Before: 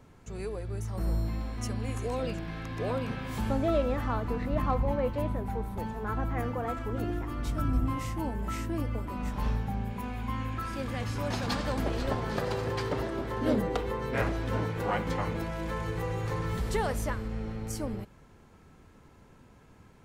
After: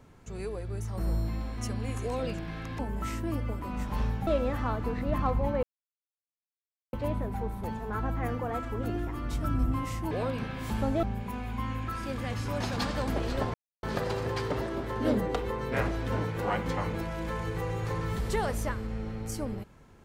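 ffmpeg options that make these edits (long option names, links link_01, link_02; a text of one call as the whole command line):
ffmpeg -i in.wav -filter_complex "[0:a]asplit=7[link_01][link_02][link_03][link_04][link_05][link_06][link_07];[link_01]atrim=end=2.792[link_08];[link_02]atrim=start=8.248:end=9.732[link_09];[link_03]atrim=start=3.708:end=5.07,asetpts=PTS-STARTPTS,afade=type=out:start_time=1.358:duration=0.004:curve=hsin,apad=pad_dur=1.3[link_10];[link_04]atrim=start=5.07:end=8.252,asetpts=PTS-STARTPTS,afade=type=in:duration=0.004:curve=hsin[link_11];[link_05]atrim=start=2.788:end=3.712[link_12];[link_06]atrim=start=9.728:end=12.24,asetpts=PTS-STARTPTS,afade=type=out:start_time=2.508:duration=0.004:curve=hsin,apad=pad_dur=0.29[link_13];[link_07]atrim=start=12.24,asetpts=PTS-STARTPTS,afade=type=in:duration=0.004:curve=hsin[link_14];[link_08][link_09]acrossfade=duration=0.004:curve1=hsin:curve2=hsin[link_15];[link_10][link_11]concat=n=2:v=0:a=1[link_16];[link_15][link_16]acrossfade=duration=0.004:curve1=hsin:curve2=hsin[link_17];[link_17][link_12]acrossfade=duration=0.004:curve1=hsin:curve2=hsin[link_18];[link_13][link_14]concat=n=2:v=0:a=1[link_19];[link_18][link_19]acrossfade=duration=0.004:curve1=hsin:curve2=hsin" out.wav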